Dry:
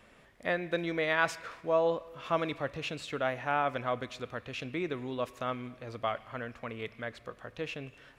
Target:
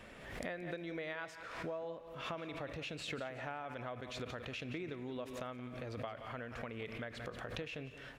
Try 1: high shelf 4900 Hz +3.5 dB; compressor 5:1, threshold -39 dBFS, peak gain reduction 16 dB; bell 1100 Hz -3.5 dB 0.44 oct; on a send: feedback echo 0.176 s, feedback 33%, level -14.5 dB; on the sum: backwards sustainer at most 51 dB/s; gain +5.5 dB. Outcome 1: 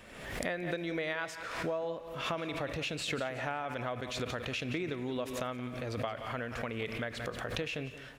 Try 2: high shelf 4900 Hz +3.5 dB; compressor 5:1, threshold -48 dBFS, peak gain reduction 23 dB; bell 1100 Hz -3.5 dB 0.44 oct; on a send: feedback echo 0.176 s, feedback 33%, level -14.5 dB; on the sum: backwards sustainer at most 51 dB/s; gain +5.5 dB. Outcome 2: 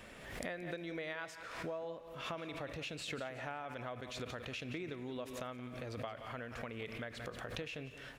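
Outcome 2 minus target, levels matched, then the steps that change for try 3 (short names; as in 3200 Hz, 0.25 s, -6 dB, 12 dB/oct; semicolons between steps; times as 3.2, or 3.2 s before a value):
8000 Hz band +3.5 dB
change: high shelf 4900 Hz -3.5 dB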